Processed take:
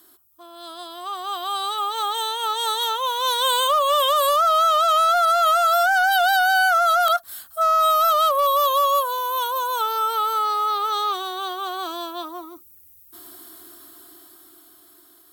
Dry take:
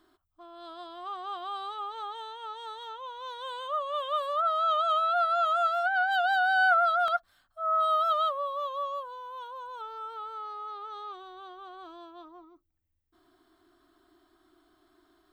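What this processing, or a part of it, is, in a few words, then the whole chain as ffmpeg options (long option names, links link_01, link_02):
FM broadcast chain: -filter_complex "[0:a]highpass=72,dynaudnorm=framelen=470:gausssize=9:maxgain=12dB,acrossover=split=370|1300[link_01][link_02][link_03];[link_01]acompressor=threshold=-49dB:ratio=4[link_04];[link_02]acompressor=threshold=-21dB:ratio=4[link_05];[link_03]acompressor=threshold=-29dB:ratio=4[link_06];[link_04][link_05][link_06]amix=inputs=3:normalize=0,aemphasis=mode=production:type=50fm,alimiter=limit=-17dB:level=0:latency=1:release=20,asoftclip=type=hard:threshold=-18.5dB,lowpass=frequency=15000:width=0.5412,lowpass=frequency=15000:width=1.3066,aemphasis=mode=production:type=50fm,volume=5dB"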